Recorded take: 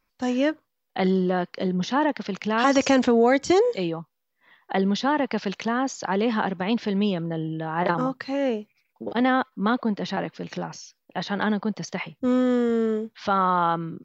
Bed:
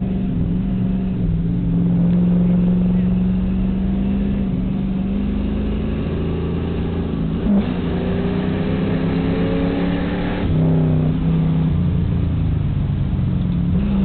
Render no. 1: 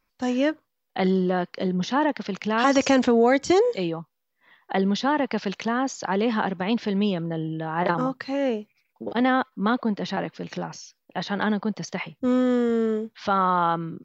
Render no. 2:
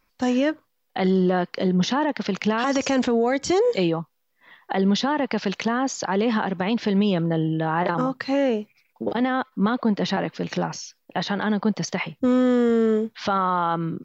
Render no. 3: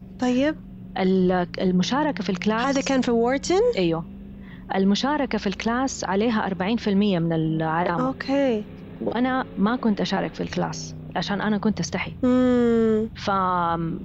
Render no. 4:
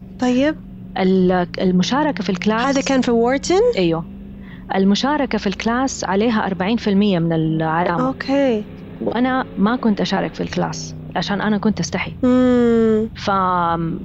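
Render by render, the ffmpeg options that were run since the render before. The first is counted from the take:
-af anull
-af "alimiter=limit=0.119:level=0:latency=1:release=158,acontrast=53"
-filter_complex "[1:a]volume=0.0944[s0];[0:a][s0]amix=inputs=2:normalize=0"
-af "volume=1.78"

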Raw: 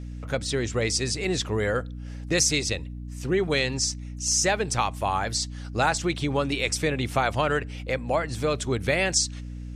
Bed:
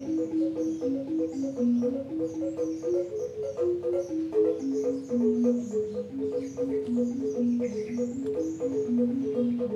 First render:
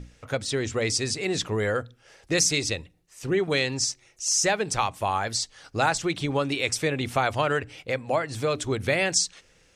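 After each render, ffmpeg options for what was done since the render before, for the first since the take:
-af "bandreject=f=60:t=h:w=6,bandreject=f=120:t=h:w=6,bandreject=f=180:t=h:w=6,bandreject=f=240:t=h:w=6,bandreject=f=300:t=h:w=6"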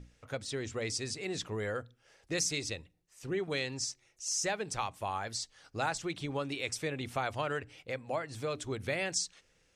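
-af "volume=0.316"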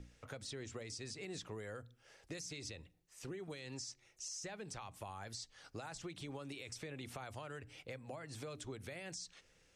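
-filter_complex "[0:a]alimiter=level_in=1.78:limit=0.0631:level=0:latency=1:release=88,volume=0.562,acrossover=split=220|6600[s0][s1][s2];[s0]acompressor=threshold=0.00251:ratio=4[s3];[s1]acompressor=threshold=0.00447:ratio=4[s4];[s2]acompressor=threshold=0.00141:ratio=4[s5];[s3][s4][s5]amix=inputs=3:normalize=0"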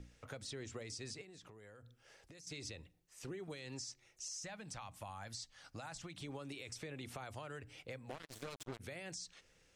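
-filter_complex "[0:a]asettb=1/sr,asplit=3[s0][s1][s2];[s0]atrim=end=1.214[s3];[s1]atrim=start=1.21:end=2.47,asetpts=PTS-STARTPTS,afade=t=in:d=0.004:c=qsin,afade=t=out:st=1.256:d=0.004:c=qsin,acompressor=threshold=0.00224:ratio=12:attack=3.2:release=140:knee=1:detection=peak[s4];[s2]atrim=start=2.466[s5];[s3][s4]acrossfade=d=0.004:c1=hsin:c2=qsin[s6];[s6][s5]acrossfade=d=0.004:c1=qsin:c2=hsin,asettb=1/sr,asplit=3[s7][s8][s9];[s7]atrim=end=4.374[s10];[s8]atrim=start=4.37:end=6.21,asetpts=PTS-STARTPTS,afade=t=in:d=0.004:c=qsin,afade=t=out:st=1.836:d=0.004:c=qsin,equalizer=f=400:t=o:w=0.32:g=-14.5[s11];[s9]atrim=start=6.206[s12];[s10][s11]acrossfade=d=0.004:c1=hsin:c2=qsin[s13];[s13][s12]acrossfade=d=0.004:c1=qsin:c2=hsin,asplit=3[s14][s15][s16];[s14]afade=t=out:st=8.09:d=0.02[s17];[s15]acrusher=bits=6:mix=0:aa=0.5,afade=t=in:st=8.09:d=0.02,afade=t=out:st=8.79:d=0.02[s18];[s16]afade=t=in:st=8.79:d=0.02[s19];[s17][s18][s19]amix=inputs=3:normalize=0"

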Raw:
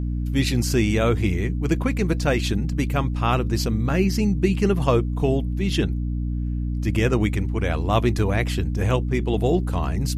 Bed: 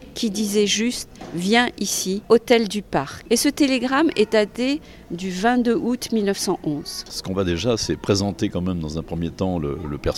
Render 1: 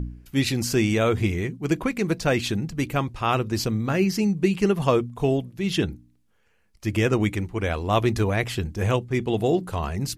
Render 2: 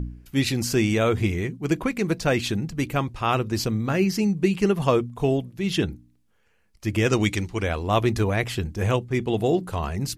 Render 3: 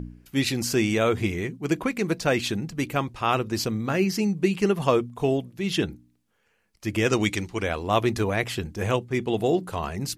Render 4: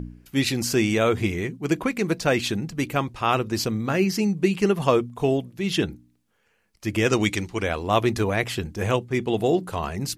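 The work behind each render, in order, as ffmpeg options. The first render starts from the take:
-af "bandreject=f=60:t=h:w=4,bandreject=f=120:t=h:w=4,bandreject=f=180:t=h:w=4,bandreject=f=240:t=h:w=4,bandreject=f=300:t=h:w=4"
-filter_complex "[0:a]asplit=3[s0][s1][s2];[s0]afade=t=out:st=7.05:d=0.02[s3];[s1]equalizer=f=5100:w=0.72:g=12,afade=t=in:st=7.05:d=0.02,afade=t=out:st=7.62:d=0.02[s4];[s2]afade=t=in:st=7.62:d=0.02[s5];[s3][s4][s5]amix=inputs=3:normalize=0"
-af "lowshelf=f=99:g=-11"
-af "volume=1.19"

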